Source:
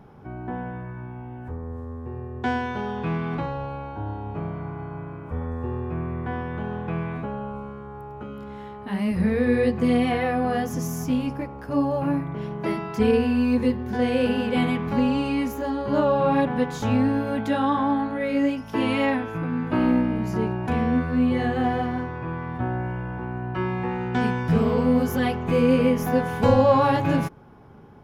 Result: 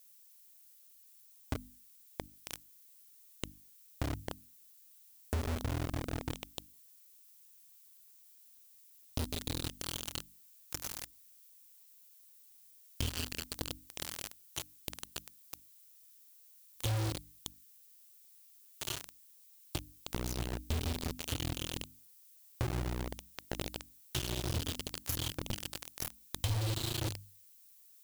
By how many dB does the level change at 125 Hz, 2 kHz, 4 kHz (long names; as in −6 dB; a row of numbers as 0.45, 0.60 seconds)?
−12.0, −16.5, −2.5 decibels